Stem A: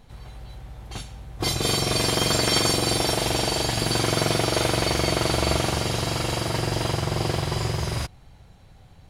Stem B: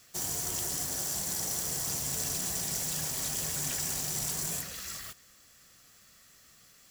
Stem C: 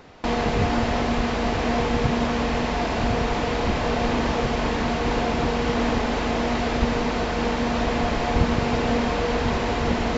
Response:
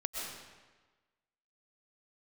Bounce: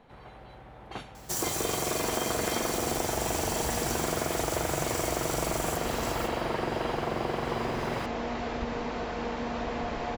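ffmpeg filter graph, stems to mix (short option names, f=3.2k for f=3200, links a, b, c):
-filter_complex "[0:a]acrossover=split=170 3200:gain=0.251 1 0.2[a][b][c];[a][b][c]amix=inputs=3:normalize=0,volume=-3dB[d];[1:a]asubboost=boost=10.5:cutoff=93,adelay=1150,volume=0dB,asplit=2[e][f];[f]volume=-6dB[g];[2:a]adelay=1800,volume=-12.5dB[h];[3:a]atrim=start_sample=2205[i];[g][i]afir=irnorm=-1:irlink=0[j];[d][e][h][j]amix=inputs=4:normalize=0,equalizer=f=750:w=0.36:g=5,acompressor=threshold=-27dB:ratio=4"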